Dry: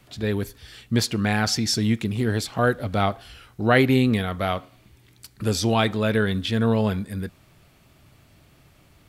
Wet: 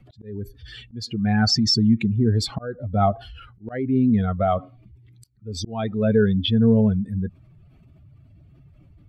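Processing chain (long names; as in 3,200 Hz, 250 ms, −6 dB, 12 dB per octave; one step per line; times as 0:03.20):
expanding power law on the bin magnitudes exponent 2.1
volume swells 499 ms
level +4.5 dB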